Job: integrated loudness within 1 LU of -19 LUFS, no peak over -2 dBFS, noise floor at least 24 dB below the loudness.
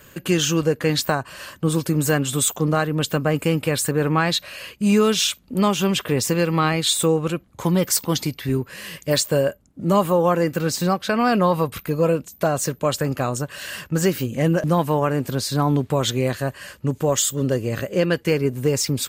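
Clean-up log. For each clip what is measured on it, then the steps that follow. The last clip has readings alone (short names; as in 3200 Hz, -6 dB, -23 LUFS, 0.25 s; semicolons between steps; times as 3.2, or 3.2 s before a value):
loudness -21.0 LUFS; peak -6.0 dBFS; loudness target -19.0 LUFS
-> gain +2 dB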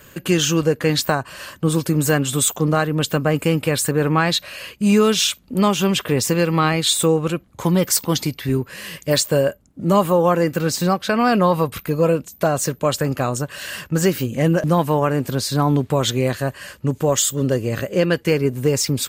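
loudness -19.0 LUFS; peak -4.0 dBFS; noise floor -50 dBFS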